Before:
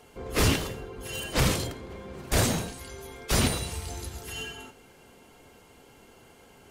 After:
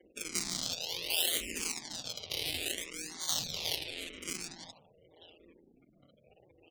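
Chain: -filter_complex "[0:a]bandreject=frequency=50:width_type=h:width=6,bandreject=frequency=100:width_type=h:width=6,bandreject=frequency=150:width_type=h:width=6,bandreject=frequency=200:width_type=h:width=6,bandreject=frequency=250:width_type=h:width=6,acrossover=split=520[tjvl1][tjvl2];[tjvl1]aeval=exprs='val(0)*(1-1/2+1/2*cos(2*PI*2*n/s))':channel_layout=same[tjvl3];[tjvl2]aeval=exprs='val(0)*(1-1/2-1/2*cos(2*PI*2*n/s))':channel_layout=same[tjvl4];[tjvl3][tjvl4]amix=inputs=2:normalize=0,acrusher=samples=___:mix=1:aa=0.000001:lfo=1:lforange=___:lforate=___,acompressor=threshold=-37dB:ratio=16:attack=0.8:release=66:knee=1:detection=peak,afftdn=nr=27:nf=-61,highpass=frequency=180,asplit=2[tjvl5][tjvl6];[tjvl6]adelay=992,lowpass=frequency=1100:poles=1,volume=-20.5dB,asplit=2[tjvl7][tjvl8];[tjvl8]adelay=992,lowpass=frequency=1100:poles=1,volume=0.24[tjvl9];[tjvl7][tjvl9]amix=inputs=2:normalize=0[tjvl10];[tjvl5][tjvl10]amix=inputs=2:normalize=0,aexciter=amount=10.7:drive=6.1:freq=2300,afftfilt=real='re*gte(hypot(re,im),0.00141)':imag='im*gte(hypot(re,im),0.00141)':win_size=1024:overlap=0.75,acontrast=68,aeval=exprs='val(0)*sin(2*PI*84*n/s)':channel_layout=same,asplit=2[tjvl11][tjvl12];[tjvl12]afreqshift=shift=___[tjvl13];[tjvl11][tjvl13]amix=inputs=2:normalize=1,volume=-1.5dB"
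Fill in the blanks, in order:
34, 34, 0.54, -0.74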